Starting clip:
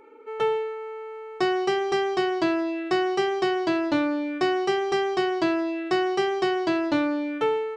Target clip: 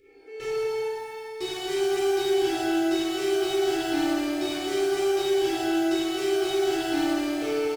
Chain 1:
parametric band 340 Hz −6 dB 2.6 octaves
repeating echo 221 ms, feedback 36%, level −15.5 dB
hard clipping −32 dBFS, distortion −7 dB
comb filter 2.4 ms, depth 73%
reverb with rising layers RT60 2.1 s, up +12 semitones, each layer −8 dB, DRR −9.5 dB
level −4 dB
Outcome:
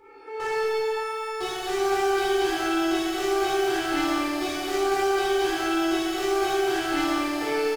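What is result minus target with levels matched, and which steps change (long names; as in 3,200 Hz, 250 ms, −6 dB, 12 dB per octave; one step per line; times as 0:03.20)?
1,000 Hz band +5.5 dB
add first: Butterworth band-reject 970 Hz, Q 0.52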